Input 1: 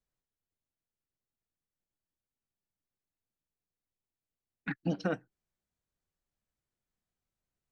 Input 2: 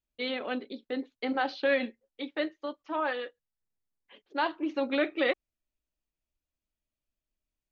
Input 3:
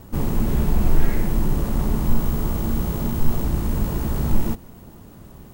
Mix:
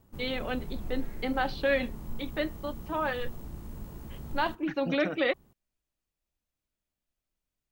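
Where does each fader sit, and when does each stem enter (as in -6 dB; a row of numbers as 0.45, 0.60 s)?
-3.5, 0.0, -19.5 dB; 0.00, 0.00, 0.00 s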